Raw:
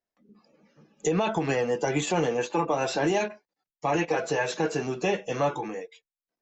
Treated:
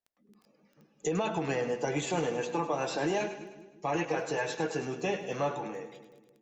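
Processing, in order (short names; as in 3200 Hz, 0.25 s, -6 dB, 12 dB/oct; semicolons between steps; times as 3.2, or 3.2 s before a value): split-band echo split 440 Hz, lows 0.175 s, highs 0.103 s, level -10.5 dB; crackle 11/s -43 dBFS; gain -5.5 dB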